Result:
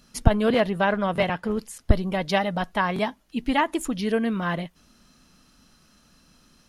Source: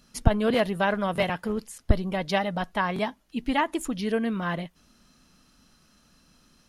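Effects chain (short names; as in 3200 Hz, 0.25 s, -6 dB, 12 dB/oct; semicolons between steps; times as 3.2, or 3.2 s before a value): 0.52–1.51 high shelf 7000 Hz -11 dB; gain +2.5 dB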